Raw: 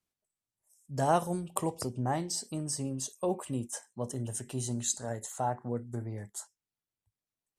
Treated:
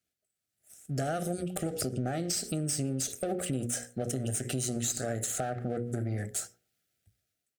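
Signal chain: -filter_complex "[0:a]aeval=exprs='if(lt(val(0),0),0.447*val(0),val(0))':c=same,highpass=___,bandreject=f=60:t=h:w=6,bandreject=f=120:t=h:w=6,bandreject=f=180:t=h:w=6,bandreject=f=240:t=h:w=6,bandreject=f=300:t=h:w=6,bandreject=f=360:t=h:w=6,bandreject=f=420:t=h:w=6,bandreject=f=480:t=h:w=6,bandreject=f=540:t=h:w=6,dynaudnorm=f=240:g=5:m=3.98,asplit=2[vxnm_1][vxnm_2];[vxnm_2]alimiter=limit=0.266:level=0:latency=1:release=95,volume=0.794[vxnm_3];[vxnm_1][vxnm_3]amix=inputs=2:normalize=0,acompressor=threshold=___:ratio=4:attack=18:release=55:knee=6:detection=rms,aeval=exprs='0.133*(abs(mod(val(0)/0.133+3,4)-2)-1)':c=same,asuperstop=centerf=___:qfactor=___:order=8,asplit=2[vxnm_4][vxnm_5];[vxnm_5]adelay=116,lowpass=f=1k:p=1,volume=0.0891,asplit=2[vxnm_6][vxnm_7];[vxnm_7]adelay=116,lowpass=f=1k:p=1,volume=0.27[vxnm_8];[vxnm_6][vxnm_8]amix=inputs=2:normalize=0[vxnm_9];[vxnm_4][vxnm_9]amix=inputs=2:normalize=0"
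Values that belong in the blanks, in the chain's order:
49, 0.0224, 980, 2.1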